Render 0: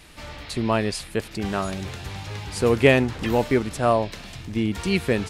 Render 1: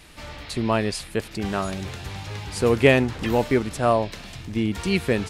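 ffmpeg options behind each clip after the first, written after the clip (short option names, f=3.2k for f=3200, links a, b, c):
-af anull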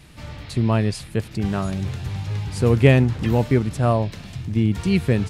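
-af "equalizer=f=120:t=o:w=1.8:g=13,volume=-3dB"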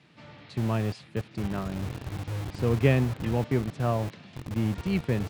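-filter_complex "[0:a]lowpass=4.1k,acrossover=split=120|1300[a][b][c];[a]acrusher=bits=4:mix=0:aa=0.000001[d];[d][b][c]amix=inputs=3:normalize=0,volume=-8dB"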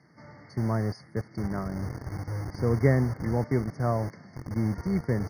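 -af "afftfilt=real='re*eq(mod(floor(b*sr/1024/2200),2),0)':imag='im*eq(mod(floor(b*sr/1024/2200),2),0)':win_size=1024:overlap=0.75"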